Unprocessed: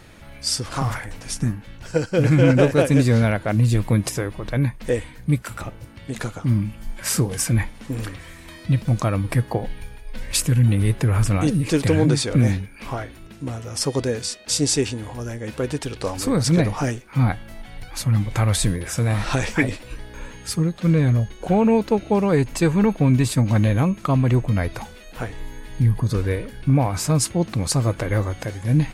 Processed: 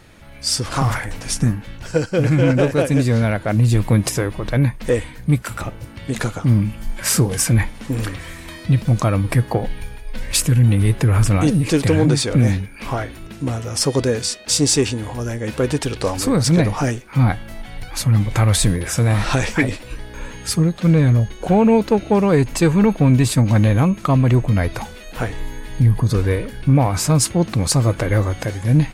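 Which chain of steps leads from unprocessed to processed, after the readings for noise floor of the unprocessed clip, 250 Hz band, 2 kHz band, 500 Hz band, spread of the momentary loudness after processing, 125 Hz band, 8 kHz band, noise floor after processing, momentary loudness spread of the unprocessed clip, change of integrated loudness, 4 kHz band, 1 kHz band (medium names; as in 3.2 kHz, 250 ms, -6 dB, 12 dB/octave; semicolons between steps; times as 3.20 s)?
-42 dBFS, +3.0 dB, +3.0 dB, +3.0 dB, 13 LU, +3.5 dB, +4.5 dB, -37 dBFS, 15 LU, +3.0 dB, +4.0 dB, +3.5 dB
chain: level rider gain up to 8.5 dB; in parallel at -6 dB: saturation -13 dBFS, distortion -10 dB; on the sum: trim -4.5 dB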